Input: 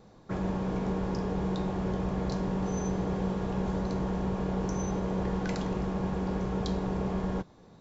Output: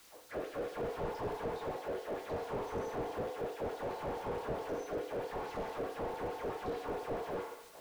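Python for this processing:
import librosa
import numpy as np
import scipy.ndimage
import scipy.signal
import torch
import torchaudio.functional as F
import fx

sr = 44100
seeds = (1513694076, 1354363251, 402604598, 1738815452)

y = scipy.signal.sosfilt(scipy.signal.butter(2, 290.0, 'highpass', fs=sr, output='sos'), x)
y = fx.high_shelf(y, sr, hz=4600.0, db=-11.5)
y = fx.dmg_noise_colour(y, sr, seeds[0], colour='violet', level_db=-55.0)
y = fx.rotary_switch(y, sr, hz=0.65, then_hz=8.0, switch_at_s=5.54)
y = fx.filter_lfo_highpass(y, sr, shape='sine', hz=4.6, low_hz=480.0, high_hz=4800.0, q=2.0)
y = fx.rev_fdn(y, sr, rt60_s=0.8, lf_ratio=0.8, hf_ratio=0.95, size_ms=20.0, drr_db=3.5)
y = fx.slew_limit(y, sr, full_power_hz=4.8)
y = y * 10.0 ** (6.0 / 20.0)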